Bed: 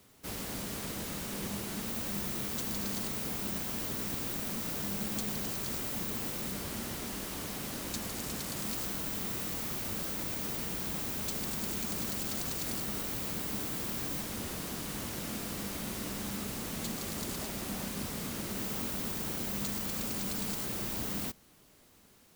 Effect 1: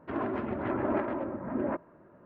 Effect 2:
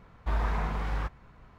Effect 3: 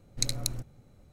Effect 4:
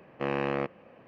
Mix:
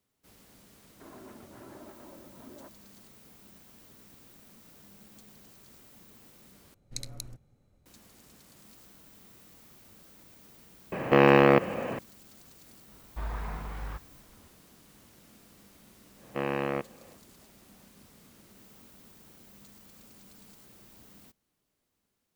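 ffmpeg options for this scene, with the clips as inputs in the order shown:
-filter_complex "[4:a]asplit=2[a][b];[0:a]volume=-19dB[c];[1:a]alimiter=level_in=0.5dB:limit=-24dB:level=0:latency=1:release=175,volume=-0.5dB[d];[a]alimiter=level_in=27.5dB:limit=-1dB:release=50:level=0:latency=1[e];[c]asplit=2[f][g];[f]atrim=end=6.744[h];[3:a]atrim=end=1.12,asetpts=PTS-STARTPTS,volume=-9.5dB[i];[g]atrim=start=7.856[j];[d]atrim=end=2.25,asetpts=PTS-STARTPTS,volume=-15.5dB,afade=t=in:d=0.004:c=hsin,afade=t=out:st=2.246:d=0.004:c=hsin,adelay=920[k];[e]atrim=end=1.07,asetpts=PTS-STARTPTS,volume=-7dB,afade=t=in:d=0.004:c=hsin,afade=t=out:st=1.066:d=0.004:c=hsin,adelay=10920[l];[2:a]atrim=end=1.58,asetpts=PTS-STARTPTS,volume=-7dB,afade=t=in:d=0.004:c=hsin,afade=t=out:st=1.576:d=0.004:c=hsin,adelay=12900[m];[b]atrim=end=1.07,asetpts=PTS-STARTPTS,volume=-1dB,afade=t=in:d=0.1,afade=t=out:st=0.97:d=0.1,adelay=16150[n];[h][i]acrossfade=d=0.004:c1=hsin:c2=hsin[o];[o][j]acrossfade=d=0.004:c1=hsin:c2=hsin[p];[p][k][l][m][n]amix=inputs=5:normalize=0"

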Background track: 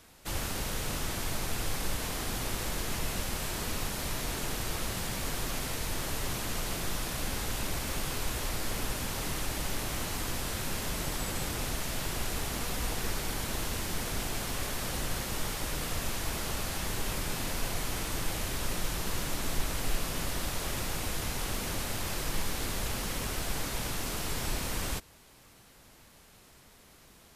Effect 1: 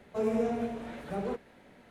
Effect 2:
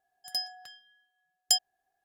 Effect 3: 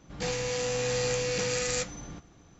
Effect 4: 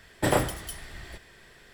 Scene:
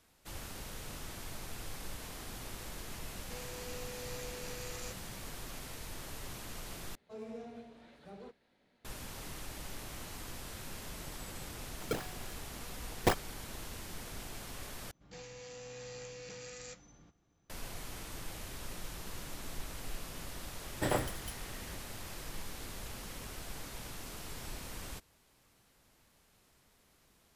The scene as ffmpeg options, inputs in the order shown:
-filter_complex "[3:a]asplit=2[a][b];[0:a]volume=-11dB[c];[1:a]equalizer=f=4.3k:t=o:w=0.97:g=9.5[d];[2:a]acrusher=samples=27:mix=1:aa=0.000001:lfo=1:lforange=43.2:lforate=3.6[e];[c]asplit=3[f][g][h];[f]atrim=end=6.954[i];[d]atrim=end=1.9,asetpts=PTS-STARTPTS,volume=-16.5dB[j];[g]atrim=start=8.846:end=14.914[k];[b]atrim=end=2.59,asetpts=PTS-STARTPTS,volume=-18dB[l];[h]atrim=start=17.496[m];[a]atrim=end=2.59,asetpts=PTS-STARTPTS,volume=-17dB,afade=t=in:d=0.004:c=hsin,afade=t=out:st=2.586:d=0.004:c=hsin,adelay=136269S[n];[e]atrim=end=2.04,asetpts=PTS-STARTPTS,volume=-4dB,afade=t=in:d=0.004:c=hsin,afade=t=out:st=2.036:d=0.004:c=hsin,adelay=11560[o];[4:a]atrim=end=1.73,asetpts=PTS-STARTPTS,volume=-8.5dB,afade=t=in:d=0.004:c=hsin,afade=t=out:st=1.726:d=0.004:c=hsin,adelay=20590[p];[i][j]acrossfade=d=0.004:c1=hsin:c2=hsin[q];[q][k]acrossfade=d=0.004:c1=hsin:c2=hsin[r];[r][l]acrossfade=d=0.004:c1=hsin:c2=hsin[s];[s][m]acrossfade=d=0.004:c1=hsin:c2=hsin[t];[t][n][o][p]amix=inputs=4:normalize=0"

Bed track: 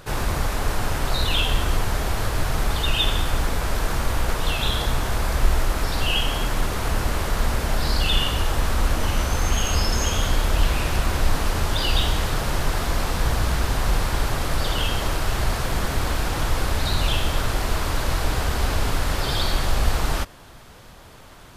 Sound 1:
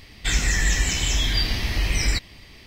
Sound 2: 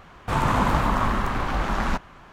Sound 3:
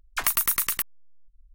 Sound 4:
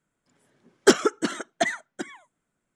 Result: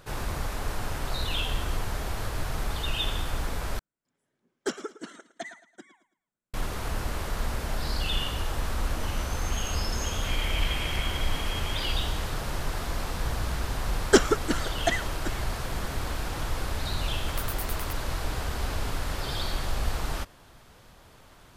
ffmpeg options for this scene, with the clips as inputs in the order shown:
-filter_complex "[4:a]asplit=2[a][b];[0:a]volume=-8dB[c];[a]aecho=1:1:110|220|330:0.178|0.0622|0.0218[d];[2:a]lowpass=f=2.8k:t=q:w=0.5098,lowpass=f=2.8k:t=q:w=0.6013,lowpass=f=2.8k:t=q:w=0.9,lowpass=f=2.8k:t=q:w=2.563,afreqshift=-3300[e];[c]asplit=2[f][g];[f]atrim=end=3.794[h];[d]atrim=end=2.75,asetpts=PTS-STARTPTS,volume=-14.5dB[i];[g]atrim=start=6.536[j];[e]atrim=end=2.32,asetpts=PTS-STARTPTS,volume=-14.5dB,afade=t=in:d=0.004:c=hsin,afade=t=out:st=2.316:d=0.004:c=hsin,adelay=9960[k];[b]atrim=end=2.75,asetpts=PTS-STARTPTS,volume=-2dB,afade=t=in:d=0.004:c=hsin,afade=t=out:st=2.746:d=0.004:c=hsin,adelay=13260[l];[3:a]atrim=end=1.54,asetpts=PTS-STARTPTS,volume=-15dB,afade=t=in:d=0.004:c=hsin,afade=t=out:st=1.536:d=0.004:c=hsin,adelay=17110[m];[h][i]acrossfade=d=0.004:c1=hsin:c2=hsin[n];[n][j]acrossfade=d=0.004:c1=hsin:c2=hsin[o];[o][k][l][m]amix=inputs=4:normalize=0"

